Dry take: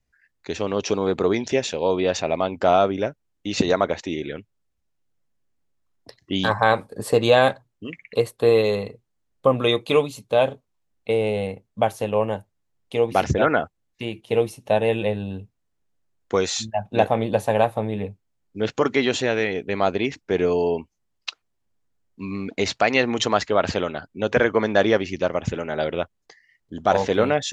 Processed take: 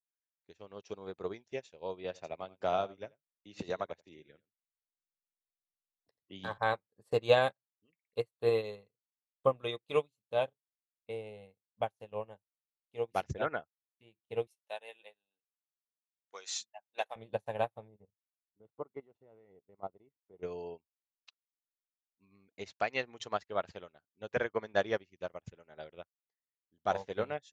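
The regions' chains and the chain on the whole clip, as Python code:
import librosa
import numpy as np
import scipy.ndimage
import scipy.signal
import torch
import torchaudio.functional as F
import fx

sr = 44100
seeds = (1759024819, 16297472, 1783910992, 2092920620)

y = fx.chain(x, sr, fx.echo_single(ms=85, db=-11.5),
    fx.band_squash(depth_pct=40), at=(2.04, 6.58))
y = fx.chain(y, sr, fx.highpass(hz=710.0, slope=12),
    fx.high_shelf(hz=2500.0, db=8.5), at=(14.47, 17.16))
y = fx.chain(y, sr, fx.level_steps(step_db=9),
    fx.savgol(points=65), at=(17.88, 20.43))
y = fx.dynamic_eq(y, sr, hz=260.0, q=2.4, threshold_db=-38.0, ratio=4.0, max_db=-6)
y = fx.upward_expand(y, sr, threshold_db=-40.0, expansion=2.5)
y = F.gain(torch.from_numpy(y), -6.5).numpy()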